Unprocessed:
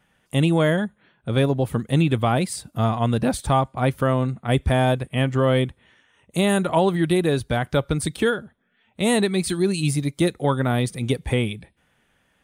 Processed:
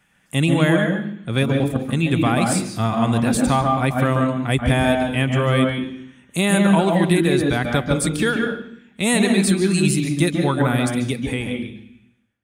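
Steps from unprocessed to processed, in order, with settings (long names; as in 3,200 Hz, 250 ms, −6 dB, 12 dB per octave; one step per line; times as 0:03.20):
fade-out on the ending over 1.78 s
0:01.43–0:02.03: output level in coarse steps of 10 dB
convolution reverb RT60 0.65 s, pre-delay 134 ms, DRR 4 dB
level +4 dB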